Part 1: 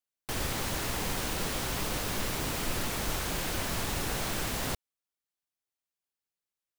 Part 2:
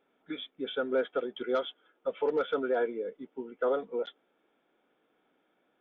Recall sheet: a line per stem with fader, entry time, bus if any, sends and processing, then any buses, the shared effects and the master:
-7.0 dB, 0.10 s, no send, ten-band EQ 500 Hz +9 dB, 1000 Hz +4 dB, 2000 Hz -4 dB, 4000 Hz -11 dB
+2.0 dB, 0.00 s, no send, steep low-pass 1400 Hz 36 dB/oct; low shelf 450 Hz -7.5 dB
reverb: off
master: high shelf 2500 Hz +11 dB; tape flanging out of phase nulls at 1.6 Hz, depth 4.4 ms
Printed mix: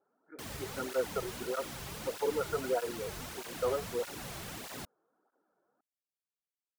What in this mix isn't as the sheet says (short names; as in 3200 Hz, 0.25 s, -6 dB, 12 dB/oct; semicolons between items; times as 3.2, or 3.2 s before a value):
stem 1: missing ten-band EQ 500 Hz +9 dB, 1000 Hz +4 dB, 2000 Hz -4 dB, 4000 Hz -11 dB; master: missing high shelf 2500 Hz +11 dB